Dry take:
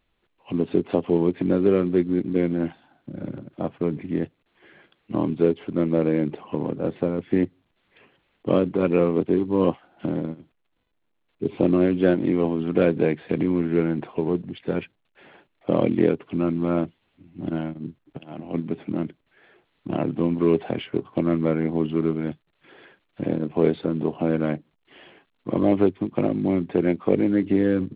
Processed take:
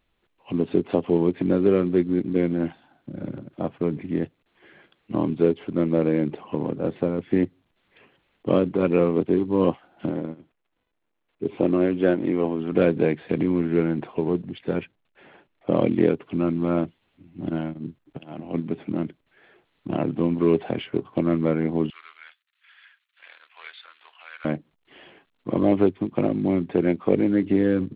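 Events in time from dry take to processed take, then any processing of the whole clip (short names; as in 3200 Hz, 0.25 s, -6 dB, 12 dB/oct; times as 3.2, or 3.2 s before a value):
10.1–12.72 tone controls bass -5 dB, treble -8 dB
14.77–15.75 air absorption 110 m
21.9–24.45 HPF 1400 Hz 24 dB/oct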